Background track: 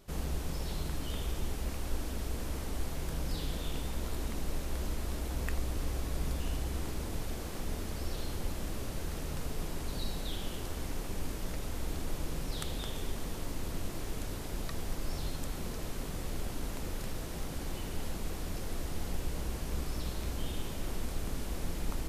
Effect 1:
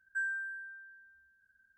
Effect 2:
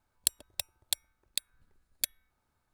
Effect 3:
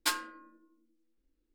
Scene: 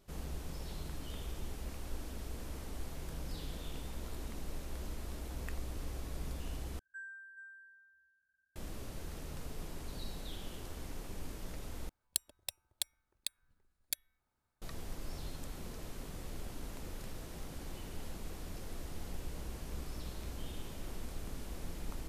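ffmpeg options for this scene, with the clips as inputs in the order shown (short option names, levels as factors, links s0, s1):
-filter_complex "[0:a]volume=0.447[s0];[1:a]aecho=1:1:425:0.335[s1];[s0]asplit=3[s2][s3][s4];[s2]atrim=end=6.794[s5];[s1]atrim=end=1.77,asetpts=PTS-STARTPTS,volume=0.224[s6];[s3]atrim=start=8.556:end=11.894[s7];[2:a]atrim=end=2.73,asetpts=PTS-STARTPTS,volume=0.473[s8];[s4]atrim=start=14.616[s9];[s5][s6]acrossfade=d=0.004:c1=hsin:c2=hsin[s10];[s10][s7]acrossfade=d=0.004:c1=hsin:c2=hsin[s11];[s11][s8]acrossfade=d=0.004:c1=hsin:c2=hsin[s12];[s12][s9]acrossfade=d=0.004:c1=hsin:c2=hsin"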